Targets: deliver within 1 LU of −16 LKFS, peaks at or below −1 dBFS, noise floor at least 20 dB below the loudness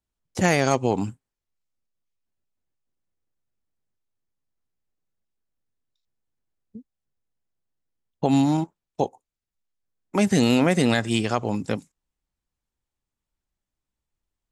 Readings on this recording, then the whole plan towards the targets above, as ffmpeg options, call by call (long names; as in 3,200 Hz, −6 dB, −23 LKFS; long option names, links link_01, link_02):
integrated loudness −23.0 LKFS; sample peak −7.0 dBFS; target loudness −16.0 LKFS
→ -af "volume=7dB,alimiter=limit=-1dB:level=0:latency=1"